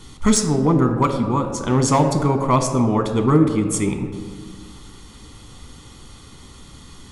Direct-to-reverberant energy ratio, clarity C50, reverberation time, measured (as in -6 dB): 5.5 dB, 7.5 dB, 1.9 s